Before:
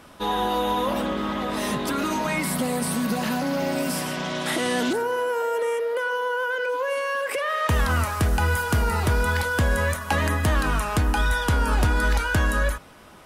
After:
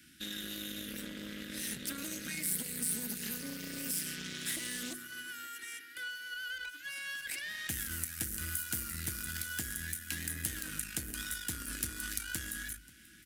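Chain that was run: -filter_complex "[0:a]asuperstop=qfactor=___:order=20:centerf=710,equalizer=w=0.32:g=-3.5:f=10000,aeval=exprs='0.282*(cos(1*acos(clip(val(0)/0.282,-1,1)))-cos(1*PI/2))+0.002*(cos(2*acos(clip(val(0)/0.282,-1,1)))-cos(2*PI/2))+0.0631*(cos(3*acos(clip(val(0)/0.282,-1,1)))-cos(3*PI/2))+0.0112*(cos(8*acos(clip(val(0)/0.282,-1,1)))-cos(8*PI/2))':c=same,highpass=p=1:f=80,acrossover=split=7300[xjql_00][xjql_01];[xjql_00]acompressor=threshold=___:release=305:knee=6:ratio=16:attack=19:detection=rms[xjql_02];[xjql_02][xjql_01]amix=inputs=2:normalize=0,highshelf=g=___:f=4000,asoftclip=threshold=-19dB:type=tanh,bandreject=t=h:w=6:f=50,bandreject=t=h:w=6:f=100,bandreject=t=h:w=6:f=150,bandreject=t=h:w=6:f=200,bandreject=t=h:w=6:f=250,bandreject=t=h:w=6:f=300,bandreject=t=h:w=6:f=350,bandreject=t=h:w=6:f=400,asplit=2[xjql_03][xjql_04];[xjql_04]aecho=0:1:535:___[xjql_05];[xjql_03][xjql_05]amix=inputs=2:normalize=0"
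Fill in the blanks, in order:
0.66, -38dB, 11.5, 0.0841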